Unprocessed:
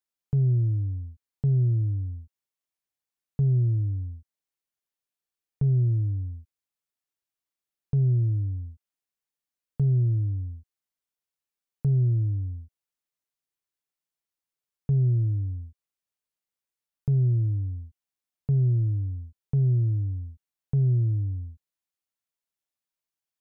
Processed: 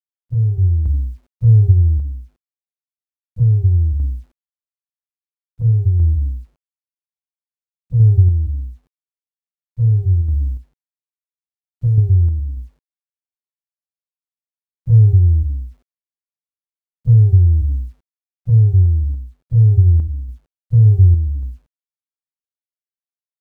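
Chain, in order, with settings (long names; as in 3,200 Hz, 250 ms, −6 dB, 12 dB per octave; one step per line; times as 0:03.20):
partials spread apart or drawn together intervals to 128%
low-pass that shuts in the quiet parts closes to 440 Hz, open at −22 dBFS
bass and treble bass +11 dB, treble +15 dB
mains-hum notches 50/100/150/200/250/300 Hz
0:10.21–0:11.98: downward compressor 4 to 1, threshold −17 dBFS, peak gain reduction 6.5 dB
bit reduction 11 bits
sample-and-hold tremolo
level +4.5 dB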